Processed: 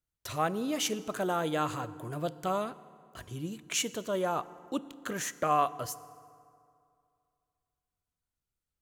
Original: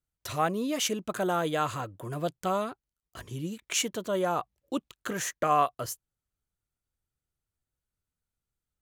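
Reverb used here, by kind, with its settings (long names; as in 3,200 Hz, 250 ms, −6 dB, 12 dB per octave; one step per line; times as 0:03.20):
feedback delay network reverb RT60 2.4 s, low-frequency decay 1×, high-frequency decay 0.6×, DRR 15.5 dB
level −2.5 dB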